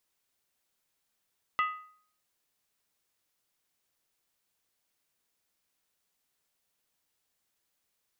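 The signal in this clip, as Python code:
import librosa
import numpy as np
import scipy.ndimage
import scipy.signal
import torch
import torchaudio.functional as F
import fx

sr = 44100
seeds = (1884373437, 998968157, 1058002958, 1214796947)

y = fx.strike_skin(sr, length_s=0.63, level_db=-23.0, hz=1250.0, decay_s=0.55, tilt_db=6, modes=5)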